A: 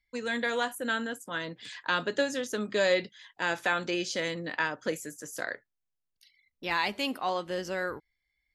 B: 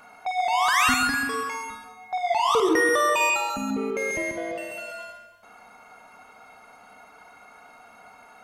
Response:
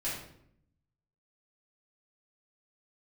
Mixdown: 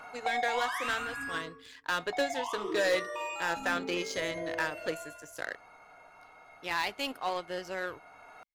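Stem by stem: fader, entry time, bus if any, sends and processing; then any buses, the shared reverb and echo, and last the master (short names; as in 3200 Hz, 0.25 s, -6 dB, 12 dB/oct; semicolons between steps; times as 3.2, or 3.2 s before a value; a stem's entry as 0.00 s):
+2.5 dB, 0.00 s, no send, power-law curve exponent 1.4; hard clip -24.5 dBFS, distortion -11 dB
+2.5 dB, 0.00 s, muted 1.41–1.99, send -14.5 dB, high shelf 6900 Hz -10.5 dB; compressor 6:1, threshold -30 dBFS, peak gain reduction 12 dB; auto duck -13 dB, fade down 1.15 s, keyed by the first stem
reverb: on, RT60 0.70 s, pre-delay 3 ms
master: bell 220 Hz -13 dB 0.29 oct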